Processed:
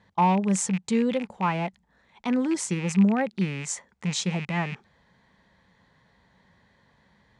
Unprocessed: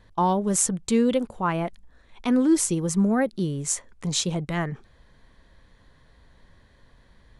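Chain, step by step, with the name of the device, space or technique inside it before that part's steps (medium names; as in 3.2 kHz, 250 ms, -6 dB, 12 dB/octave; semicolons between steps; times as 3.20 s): car door speaker with a rattle (rattle on loud lows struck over -35 dBFS, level -24 dBFS; cabinet simulation 100–8200 Hz, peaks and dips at 190 Hz +8 dB, 310 Hz -4 dB, 860 Hz +7 dB, 2 kHz +5 dB); trim -4 dB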